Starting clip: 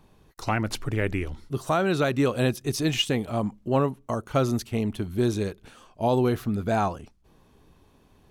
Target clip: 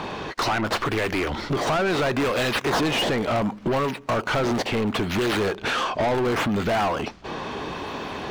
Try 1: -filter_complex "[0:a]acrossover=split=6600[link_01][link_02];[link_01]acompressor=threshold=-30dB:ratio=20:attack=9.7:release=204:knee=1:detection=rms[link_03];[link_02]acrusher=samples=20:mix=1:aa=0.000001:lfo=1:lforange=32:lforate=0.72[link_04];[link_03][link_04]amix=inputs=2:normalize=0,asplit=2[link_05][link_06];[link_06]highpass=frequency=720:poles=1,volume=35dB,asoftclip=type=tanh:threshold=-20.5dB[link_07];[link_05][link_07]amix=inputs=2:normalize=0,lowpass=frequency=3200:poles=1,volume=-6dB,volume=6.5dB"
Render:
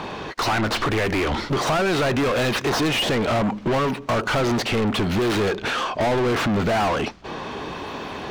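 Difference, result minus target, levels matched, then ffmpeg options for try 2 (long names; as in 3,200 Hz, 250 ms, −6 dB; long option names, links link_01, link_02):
downward compressor: peak gain reduction −9 dB
-filter_complex "[0:a]acrossover=split=6600[link_01][link_02];[link_01]acompressor=threshold=-39.5dB:ratio=20:attack=9.7:release=204:knee=1:detection=rms[link_03];[link_02]acrusher=samples=20:mix=1:aa=0.000001:lfo=1:lforange=32:lforate=0.72[link_04];[link_03][link_04]amix=inputs=2:normalize=0,asplit=2[link_05][link_06];[link_06]highpass=frequency=720:poles=1,volume=35dB,asoftclip=type=tanh:threshold=-20.5dB[link_07];[link_05][link_07]amix=inputs=2:normalize=0,lowpass=frequency=3200:poles=1,volume=-6dB,volume=6.5dB"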